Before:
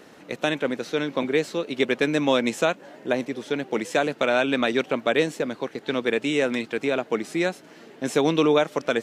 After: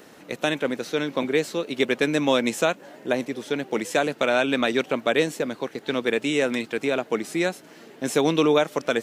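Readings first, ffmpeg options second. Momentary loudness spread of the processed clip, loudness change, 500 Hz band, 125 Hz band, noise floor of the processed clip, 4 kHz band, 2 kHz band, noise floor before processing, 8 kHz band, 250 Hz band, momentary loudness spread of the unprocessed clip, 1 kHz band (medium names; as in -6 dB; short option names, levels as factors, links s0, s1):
8 LU, 0.0 dB, 0.0 dB, 0.0 dB, -49 dBFS, +1.0 dB, +0.5 dB, -49 dBFS, +3.5 dB, 0.0 dB, 8 LU, 0.0 dB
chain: -af "highshelf=f=9700:g=10.5"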